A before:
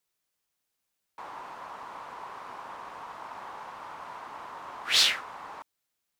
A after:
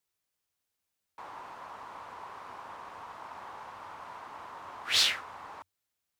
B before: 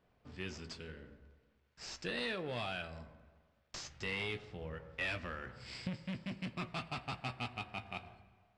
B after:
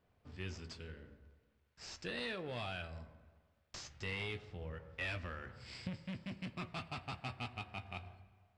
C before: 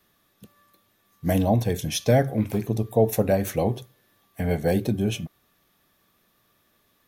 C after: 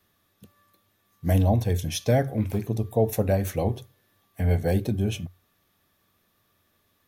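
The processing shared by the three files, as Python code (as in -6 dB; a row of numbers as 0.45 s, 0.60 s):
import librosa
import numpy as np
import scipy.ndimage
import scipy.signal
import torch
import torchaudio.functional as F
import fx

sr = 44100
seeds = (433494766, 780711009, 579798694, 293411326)

y = fx.peak_eq(x, sr, hz=90.0, db=11.0, octaves=0.31)
y = y * librosa.db_to_amplitude(-3.0)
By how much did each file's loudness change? -3.0 LU, -2.5 LU, -1.0 LU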